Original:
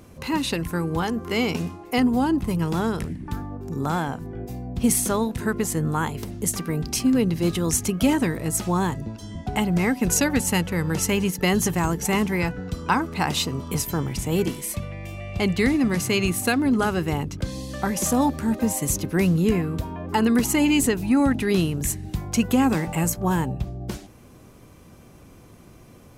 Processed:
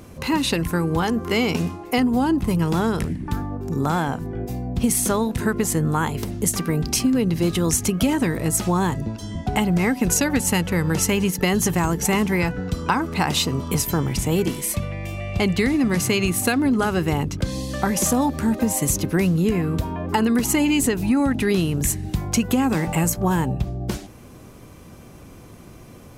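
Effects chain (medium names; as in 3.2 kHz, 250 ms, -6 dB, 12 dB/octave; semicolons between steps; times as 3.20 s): compression, threshold -21 dBFS, peak gain reduction 7 dB; trim +5 dB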